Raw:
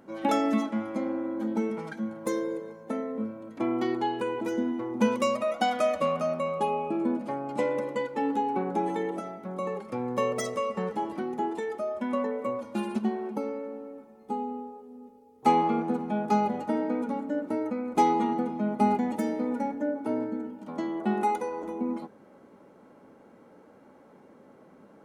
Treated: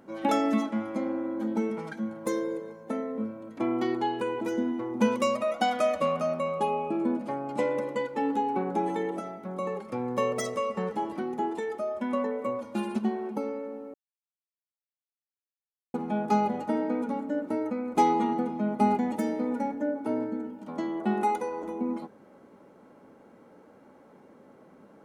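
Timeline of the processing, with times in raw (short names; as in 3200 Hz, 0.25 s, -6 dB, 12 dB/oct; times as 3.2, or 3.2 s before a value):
13.94–15.94 mute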